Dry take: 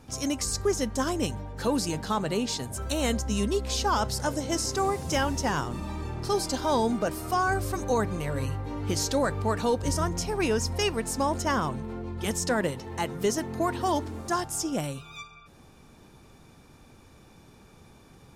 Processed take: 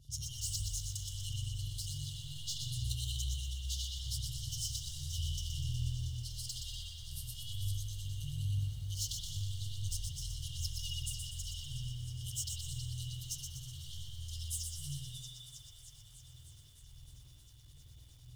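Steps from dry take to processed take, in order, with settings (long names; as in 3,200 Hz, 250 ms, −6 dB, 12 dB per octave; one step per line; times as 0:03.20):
feedback echo with a high-pass in the loop 320 ms, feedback 77%, high-pass 690 Hz, level −14.5 dB
0:03.24–0:04.15: downward compressor 16 to 1, threshold −27 dBFS, peak gain reduction 7 dB
soft clipping −29 dBFS, distortion −8 dB
0:01.59–0:02.19: dynamic equaliser 200 Hz, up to +6 dB, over −47 dBFS, Q 1.1
brick-wall band-stop 140–2,800 Hz
two-band tremolo in antiphase 9.8 Hz, depth 70%, crossover 480 Hz
spring reverb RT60 1.4 s, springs 49 ms, chirp 60 ms, DRR −4 dB
feedback echo at a low word length 122 ms, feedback 55%, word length 10 bits, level −5 dB
level −2 dB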